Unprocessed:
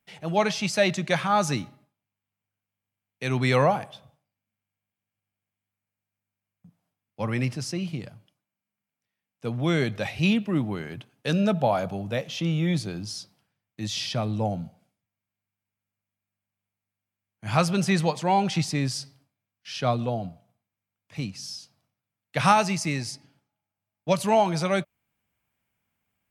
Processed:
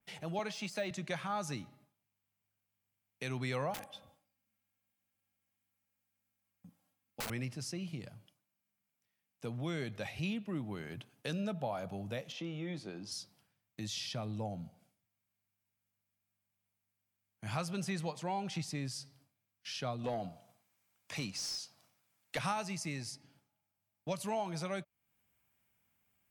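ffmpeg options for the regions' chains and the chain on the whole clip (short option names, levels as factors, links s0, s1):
-filter_complex "[0:a]asettb=1/sr,asplit=3[s0][s1][s2];[s0]atrim=end=0.394[s3];[s1]atrim=start=0.39:end=0.91,asetpts=PTS-STARTPTS,afade=t=in:d=0.004:c=qsin,afade=t=out:st=0.516:d=0.004:c=qsin,bandreject=f=5700:w=20,deesser=0.75,highpass=f=180:w=0.5412,highpass=f=180:w=1.3066[s4];[s2]atrim=start=0.906[s5];[s3][s4]acrossfade=d=0.004:c1=hsin:c2=qsin[s6];[s6][s5]acrossfade=d=0.004:c1=qsin:c2=hsin,asettb=1/sr,asplit=3[s7][s8][s9];[s7]atrim=end=3.744[s10];[s8]atrim=start=3.74:end=7.3,asetpts=PTS-STARTPTS,afade=t=in:d=0.004:c=qsin,afade=t=out:st=3.556:d=0.004:c=qsin,aecho=1:1:3.7:0.67,atrim=end_sample=156996,aeval=exprs='(mod(15.8*val(0)+1,2)-1)/15.8':c=same[s11];[s9]atrim=start=7.296[s12];[s10][s11]acrossfade=d=0.004:c1=hsin:c2=qsin[s13];[s13][s12]acrossfade=d=0.004:c1=qsin:c2=hsin,asettb=1/sr,asplit=3[s14][s15][s16];[s14]atrim=end=12.324[s17];[s15]atrim=start=12.32:end=13.12,asetpts=PTS-STARTPTS,afade=t=in:d=0.004:c=qsin,afade=t=out:st=0.796:d=0.004:c=qsin,highpass=240,aemphasis=mode=reproduction:type=75kf,asplit=2[s18][s19];[s19]adelay=21,volume=0.211[s20];[s18][s20]amix=inputs=2:normalize=0,atrim=end_sample=35280[s21];[s16]atrim=start=13.116[s22];[s17][s21]acrossfade=d=0.004:c1=hsin:c2=qsin[s23];[s23][s22]acrossfade=d=0.004:c1=qsin:c2=hsin,asettb=1/sr,asplit=3[s24][s25][s26];[s24]atrim=end=20.044[s27];[s25]atrim=start=20.04:end=22.39,asetpts=PTS-STARTPTS,afade=t=in:d=0.004:c=qsin,afade=t=out:st=2.346:d=0.004:c=qsin,bass=f=250:g=2,treble=f=4000:g=11,asplit=2[s28][s29];[s29]highpass=f=720:p=1,volume=8.91,asoftclip=type=tanh:threshold=0.299[s30];[s28][s30]amix=inputs=2:normalize=0,lowpass=f=1800:p=1,volume=0.501[s31];[s26]atrim=start=22.386[s32];[s27][s31]acrossfade=d=0.004:c1=hsin:c2=qsin[s33];[s33][s32]acrossfade=d=0.004:c1=qsin:c2=hsin,highshelf=f=5800:g=6.5,acompressor=threshold=0.00708:ratio=2,adynamicequalizer=threshold=0.00316:dfrequency=3100:dqfactor=0.7:tfrequency=3100:tqfactor=0.7:attack=5:release=100:ratio=0.375:range=1.5:mode=cutabove:tftype=highshelf,volume=0.794"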